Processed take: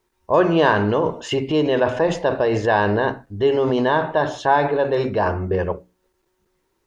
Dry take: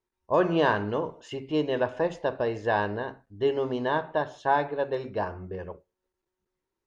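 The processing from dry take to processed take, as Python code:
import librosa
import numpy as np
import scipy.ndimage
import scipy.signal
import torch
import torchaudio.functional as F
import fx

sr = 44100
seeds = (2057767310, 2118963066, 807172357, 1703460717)

p1 = fx.hum_notches(x, sr, base_hz=60, count=5)
p2 = fx.over_compress(p1, sr, threshold_db=-34.0, ratio=-1.0)
p3 = p1 + (p2 * 10.0 ** (0.0 / 20.0))
y = p3 * 10.0 ** (6.0 / 20.0)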